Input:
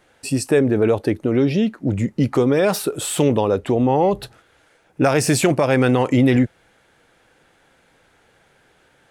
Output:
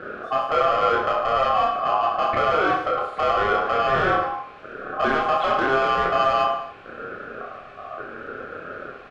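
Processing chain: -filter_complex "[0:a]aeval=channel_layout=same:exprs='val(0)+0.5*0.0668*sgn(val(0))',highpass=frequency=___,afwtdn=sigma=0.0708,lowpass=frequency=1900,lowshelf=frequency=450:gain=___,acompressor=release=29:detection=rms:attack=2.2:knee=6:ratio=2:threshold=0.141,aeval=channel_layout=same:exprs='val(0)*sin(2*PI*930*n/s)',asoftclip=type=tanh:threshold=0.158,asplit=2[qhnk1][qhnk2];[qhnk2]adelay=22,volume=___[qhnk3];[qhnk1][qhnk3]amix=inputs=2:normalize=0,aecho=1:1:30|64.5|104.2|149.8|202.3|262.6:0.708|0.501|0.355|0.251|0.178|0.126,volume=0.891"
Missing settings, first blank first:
130, 10, 0.237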